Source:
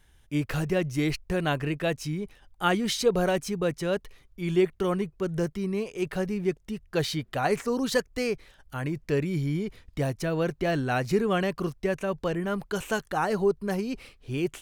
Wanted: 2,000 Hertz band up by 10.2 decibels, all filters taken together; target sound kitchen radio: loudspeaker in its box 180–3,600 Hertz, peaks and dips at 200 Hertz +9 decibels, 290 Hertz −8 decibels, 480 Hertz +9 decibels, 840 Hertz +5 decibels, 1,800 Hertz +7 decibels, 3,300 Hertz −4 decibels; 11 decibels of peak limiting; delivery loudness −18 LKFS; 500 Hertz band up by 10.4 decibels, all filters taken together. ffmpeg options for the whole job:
ffmpeg -i in.wav -af "equalizer=frequency=500:width_type=o:gain=6,equalizer=frequency=2000:width_type=o:gain=7.5,alimiter=limit=-16.5dB:level=0:latency=1,highpass=180,equalizer=frequency=200:width_type=q:width=4:gain=9,equalizer=frequency=290:width_type=q:width=4:gain=-8,equalizer=frequency=480:width_type=q:width=4:gain=9,equalizer=frequency=840:width_type=q:width=4:gain=5,equalizer=frequency=1800:width_type=q:width=4:gain=7,equalizer=frequency=3300:width_type=q:width=4:gain=-4,lowpass=frequency=3600:width=0.5412,lowpass=frequency=3600:width=1.3066,volume=5.5dB" out.wav

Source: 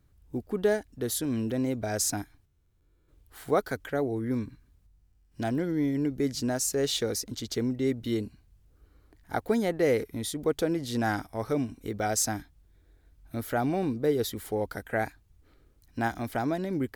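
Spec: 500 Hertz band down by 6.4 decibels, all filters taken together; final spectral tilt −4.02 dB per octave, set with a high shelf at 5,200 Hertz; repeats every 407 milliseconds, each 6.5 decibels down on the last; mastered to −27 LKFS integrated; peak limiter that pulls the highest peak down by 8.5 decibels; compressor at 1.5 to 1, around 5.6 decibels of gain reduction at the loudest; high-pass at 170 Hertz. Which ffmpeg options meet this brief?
ffmpeg -i in.wav -af "highpass=170,equalizer=frequency=500:width_type=o:gain=-8,highshelf=frequency=5200:gain=5.5,acompressor=threshold=-36dB:ratio=1.5,alimiter=level_in=1dB:limit=-24dB:level=0:latency=1,volume=-1dB,aecho=1:1:407|814|1221|1628|2035|2442:0.473|0.222|0.105|0.0491|0.0231|0.0109,volume=9.5dB" out.wav

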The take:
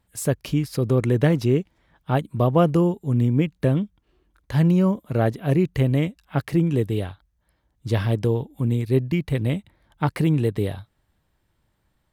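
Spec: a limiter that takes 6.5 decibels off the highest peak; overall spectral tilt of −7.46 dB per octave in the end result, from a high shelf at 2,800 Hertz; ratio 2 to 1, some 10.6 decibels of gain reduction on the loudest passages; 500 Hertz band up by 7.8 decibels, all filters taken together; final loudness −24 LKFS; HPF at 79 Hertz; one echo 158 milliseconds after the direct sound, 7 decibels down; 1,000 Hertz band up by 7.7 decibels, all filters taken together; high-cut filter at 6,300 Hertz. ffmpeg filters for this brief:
ffmpeg -i in.wav -af "highpass=79,lowpass=6300,equalizer=frequency=500:width_type=o:gain=8,equalizer=frequency=1000:width_type=o:gain=7.5,highshelf=frequency=2800:gain=-3.5,acompressor=threshold=-25dB:ratio=2,alimiter=limit=-14dB:level=0:latency=1,aecho=1:1:158:0.447,volume=2.5dB" out.wav

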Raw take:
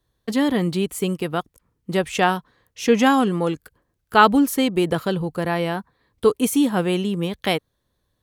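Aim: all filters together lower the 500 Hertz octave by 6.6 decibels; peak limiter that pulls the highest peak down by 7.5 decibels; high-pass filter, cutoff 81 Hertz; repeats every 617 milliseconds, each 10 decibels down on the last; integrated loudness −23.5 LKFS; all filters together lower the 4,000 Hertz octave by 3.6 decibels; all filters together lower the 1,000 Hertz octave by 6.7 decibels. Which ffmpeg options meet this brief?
ffmpeg -i in.wav -af "highpass=81,equalizer=frequency=500:width_type=o:gain=-7,equalizer=frequency=1000:width_type=o:gain=-6.5,equalizer=frequency=4000:width_type=o:gain=-4.5,alimiter=limit=-14.5dB:level=0:latency=1,aecho=1:1:617|1234|1851|2468:0.316|0.101|0.0324|0.0104,volume=2.5dB" out.wav

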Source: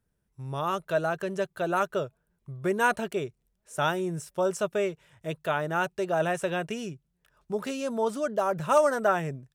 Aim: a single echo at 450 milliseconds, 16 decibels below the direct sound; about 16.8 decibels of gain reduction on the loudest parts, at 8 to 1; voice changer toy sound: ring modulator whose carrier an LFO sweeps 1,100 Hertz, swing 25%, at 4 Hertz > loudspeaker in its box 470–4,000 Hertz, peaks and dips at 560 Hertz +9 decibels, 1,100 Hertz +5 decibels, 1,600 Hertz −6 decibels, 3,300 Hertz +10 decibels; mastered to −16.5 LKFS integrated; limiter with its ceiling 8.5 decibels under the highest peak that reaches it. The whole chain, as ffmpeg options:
ffmpeg -i in.wav -af "acompressor=threshold=-34dB:ratio=8,alimiter=level_in=7.5dB:limit=-24dB:level=0:latency=1,volume=-7.5dB,aecho=1:1:450:0.158,aeval=exprs='val(0)*sin(2*PI*1100*n/s+1100*0.25/4*sin(2*PI*4*n/s))':channel_layout=same,highpass=470,equalizer=frequency=560:width_type=q:width=4:gain=9,equalizer=frequency=1100:width_type=q:width=4:gain=5,equalizer=frequency=1600:width_type=q:width=4:gain=-6,equalizer=frequency=3300:width_type=q:width=4:gain=10,lowpass=frequency=4000:width=0.5412,lowpass=frequency=4000:width=1.3066,volume=26dB" out.wav

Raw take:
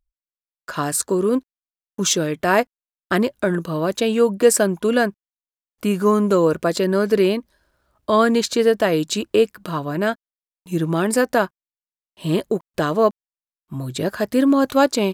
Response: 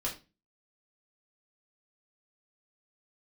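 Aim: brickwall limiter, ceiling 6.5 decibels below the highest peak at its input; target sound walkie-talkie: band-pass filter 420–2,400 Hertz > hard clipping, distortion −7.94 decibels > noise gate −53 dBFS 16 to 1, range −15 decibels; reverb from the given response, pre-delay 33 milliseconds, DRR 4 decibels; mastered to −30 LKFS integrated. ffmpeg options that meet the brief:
-filter_complex "[0:a]alimiter=limit=-9dB:level=0:latency=1,asplit=2[link_01][link_02];[1:a]atrim=start_sample=2205,adelay=33[link_03];[link_02][link_03]afir=irnorm=-1:irlink=0,volume=-7.5dB[link_04];[link_01][link_04]amix=inputs=2:normalize=0,highpass=420,lowpass=2400,asoftclip=type=hard:threshold=-21dB,agate=range=-15dB:threshold=-53dB:ratio=16,volume=-3.5dB"

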